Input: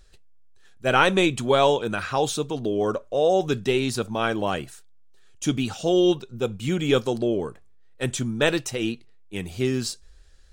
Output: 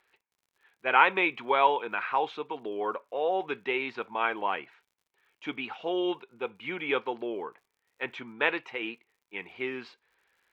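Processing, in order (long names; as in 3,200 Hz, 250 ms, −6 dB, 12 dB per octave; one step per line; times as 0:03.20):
loudspeaker in its box 490–2,800 Hz, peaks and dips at 600 Hz −7 dB, 940 Hz +8 dB, 2,200 Hz +8 dB
surface crackle 77 per second −54 dBFS
level −3.5 dB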